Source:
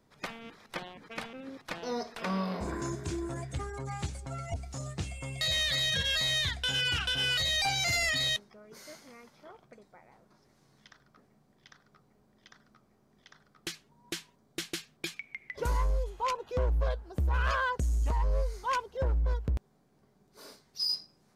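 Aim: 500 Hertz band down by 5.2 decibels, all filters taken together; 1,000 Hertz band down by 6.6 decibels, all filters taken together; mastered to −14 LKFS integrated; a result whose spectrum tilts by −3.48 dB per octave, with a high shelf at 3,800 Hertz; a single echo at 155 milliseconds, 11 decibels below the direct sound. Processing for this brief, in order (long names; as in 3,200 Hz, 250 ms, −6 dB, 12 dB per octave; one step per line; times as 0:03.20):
parametric band 500 Hz −4.5 dB
parametric band 1,000 Hz −7 dB
high-shelf EQ 3,800 Hz +7 dB
single-tap delay 155 ms −11 dB
level +15.5 dB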